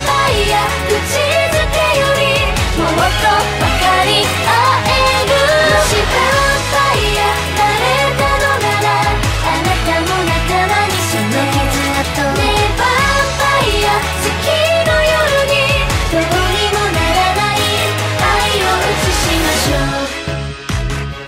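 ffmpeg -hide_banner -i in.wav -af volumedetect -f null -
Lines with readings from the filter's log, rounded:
mean_volume: -13.3 dB
max_volume: -1.7 dB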